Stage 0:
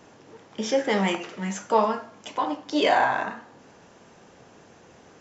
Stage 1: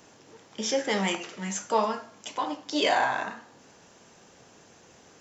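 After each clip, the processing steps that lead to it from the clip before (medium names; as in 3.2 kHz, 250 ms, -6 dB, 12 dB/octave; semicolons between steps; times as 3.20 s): treble shelf 3.7 kHz +11.5 dB; trim -4.5 dB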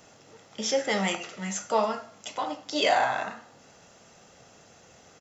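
comb 1.5 ms, depth 35%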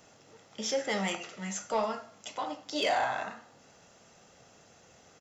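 saturation -15 dBFS, distortion -20 dB; trim -4 dB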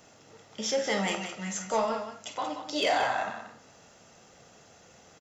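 loudspeakers at several distances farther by 17 m -11 dB, 62 m -9 dB; trim +2 dB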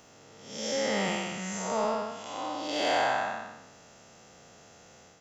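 spectral blur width 234 ms; trim +3 dB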